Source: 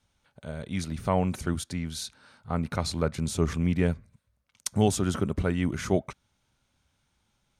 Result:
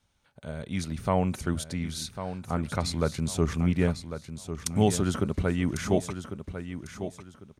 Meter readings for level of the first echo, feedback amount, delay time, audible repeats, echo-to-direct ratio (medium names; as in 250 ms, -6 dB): -10.0 dB, 27%, 1099 ms, 3, -9.5 dB